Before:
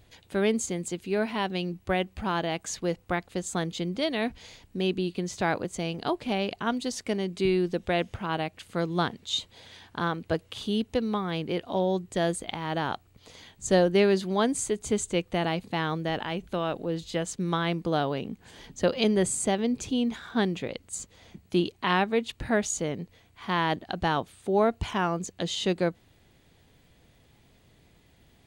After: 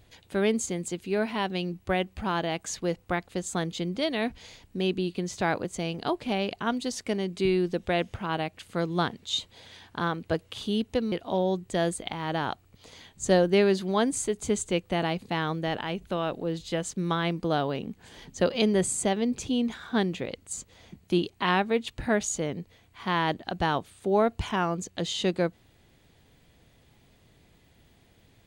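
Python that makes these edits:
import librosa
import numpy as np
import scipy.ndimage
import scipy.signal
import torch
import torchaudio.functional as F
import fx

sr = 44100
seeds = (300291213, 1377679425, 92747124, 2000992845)

y = fx.edit(x, sr, fx.cut(start_s=11.12, length_s=0.42), tone=tone)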